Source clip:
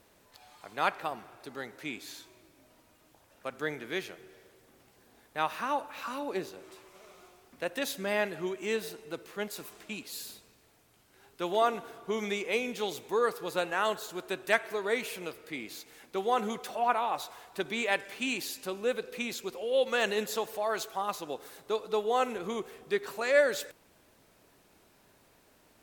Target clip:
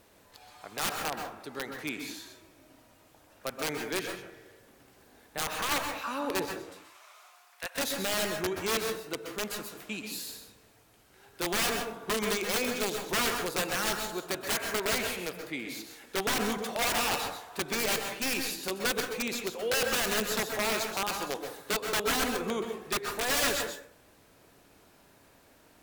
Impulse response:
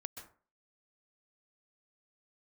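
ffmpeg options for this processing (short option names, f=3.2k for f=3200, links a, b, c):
-filter_complex "[0:a]asettb=1/sr,asplit=3[a][b][c];[a]atrim=end=6.714[d];[b]atrim=start=6.71:end=7.78,asetpts=PTS-STARTPTS,afade=t=in:d=0.004:c=qsin,afade=t=out:st=1.066:d=0.004:c=qsin,highpass=f=820:w=0.5412,highpass=f=820:w=1.3066[e];[c]atrim=start=7.776[f];[d][e]acrossfade=d=0.004:c1=hsin:c2=qsin[g];[g][f]acrossfade=d=0.004:c1=qsin:c2=hsin,aeval=exprs='(mod(18.8*val(0)+1,2)-1)/18.8':c=same[h];[1:a]atrim=start_sample=2205[i];[h][i]afir=irnorm=-1:irlink=0,volume=6.5dB"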